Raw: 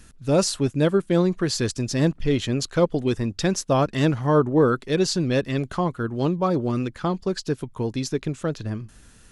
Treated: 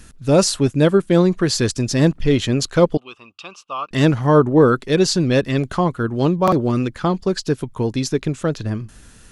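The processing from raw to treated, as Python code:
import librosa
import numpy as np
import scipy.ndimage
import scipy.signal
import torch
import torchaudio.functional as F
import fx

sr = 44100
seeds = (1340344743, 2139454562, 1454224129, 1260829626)

y = fx.double_bandpass(x, sr, hz=1800.0, octaves=1.2, at=(2.97, 3.91))
y = fx.buffer_glitch(y, sr, at_s=(6.43,), block=2048, repeats=1)
y = F.gain(torch.from_numpy(y), 5.5).numpy()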